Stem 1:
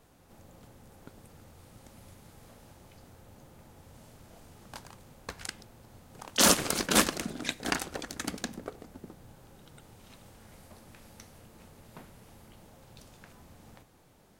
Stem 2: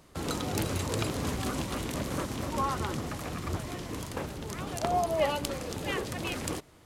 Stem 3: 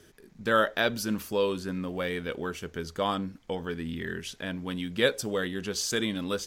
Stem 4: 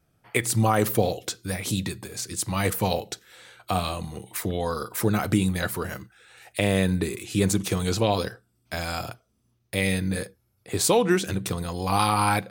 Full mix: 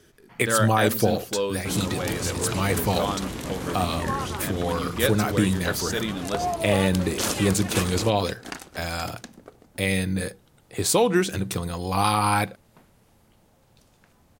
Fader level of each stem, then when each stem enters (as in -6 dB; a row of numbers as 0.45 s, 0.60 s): -5.5 dB, +1.0 dB, 0.0 dB, +0.5 dB; 0.80 s, 1.50 s, 0.00 s, 0.05 s